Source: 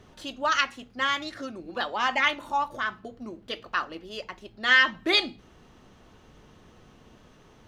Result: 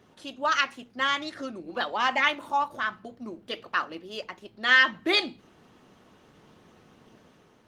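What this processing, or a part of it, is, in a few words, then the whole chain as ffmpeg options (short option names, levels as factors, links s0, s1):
video call: -filter_complex "[0:a]asettb=1/sr,asplit=3[s0][s1][s2];[s0]atrim=end=2.704[s3];[s1]atrim=start=2.7:end=3.26,asetpts=PTS-STARTPTS,afade=t=in:d=0.004:c=qsin,afade=t=out:st=0.556:d=0.004:c=qsin,equalizer=f=430:t=o:w=0.72:g=-4[s4];[s2]atrim=start=3.256[s5];[s3][s4]acrossfade=d=0.004:c1=hsin:c2=qsin[s6];[s6][s5]acrossfade=d=0.004:c1=qsin:c2=hsin,highpass=130,dynaudnorm=f=110:g=7:m=1.5,volume=0.75" -ar 48000 -c:a libopus -b:a 24k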